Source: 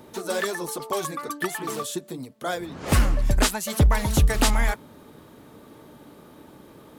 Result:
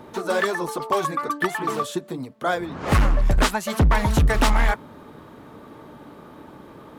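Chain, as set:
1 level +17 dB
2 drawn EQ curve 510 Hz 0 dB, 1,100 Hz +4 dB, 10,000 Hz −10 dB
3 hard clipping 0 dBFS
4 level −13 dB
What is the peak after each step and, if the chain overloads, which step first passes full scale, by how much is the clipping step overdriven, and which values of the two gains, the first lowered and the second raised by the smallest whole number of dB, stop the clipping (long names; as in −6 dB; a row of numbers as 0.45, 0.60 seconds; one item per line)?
+6.5, +8.5, 0.0, −13.0 dBFS
step 1, 8.5 dB
step 1 +8 dB, step 4 −4 dB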